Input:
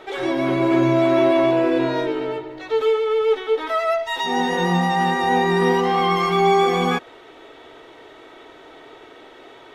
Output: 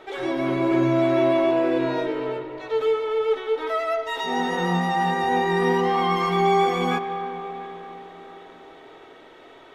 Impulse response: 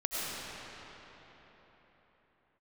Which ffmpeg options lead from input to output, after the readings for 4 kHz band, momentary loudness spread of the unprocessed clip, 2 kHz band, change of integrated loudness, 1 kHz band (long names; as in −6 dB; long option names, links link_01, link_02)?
−4.5 dB, 7 LU, −3.5 dB, −3.5 dB, −2.5 dB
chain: -filter_complex "[0:a]asplit=2[link_01][link_02];[1:a]atrim=start_sample=2205,lowpass=3400[link_03];[link_02][link_03]afir=irnorm=-1:irlink=0,volume=-14.5dB[link_04];[link_01][link_04]amix=inputs=2:normalize=0,volume=-5dB"